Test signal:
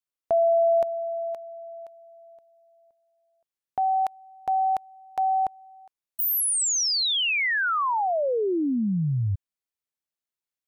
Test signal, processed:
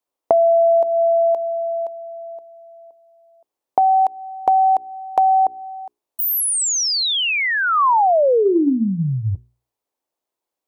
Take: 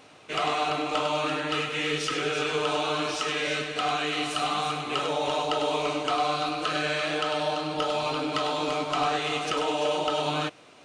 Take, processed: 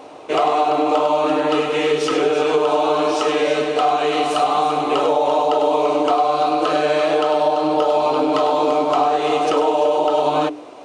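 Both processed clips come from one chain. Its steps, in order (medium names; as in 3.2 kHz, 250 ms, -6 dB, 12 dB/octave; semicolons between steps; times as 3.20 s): high-order bell 530 Hz +12.5 dB 2.3 oct; hum notches 60/120/180/240/300/360/420 Hz; compression 6:1, threshold -18 dBFS; trim +4.5 dB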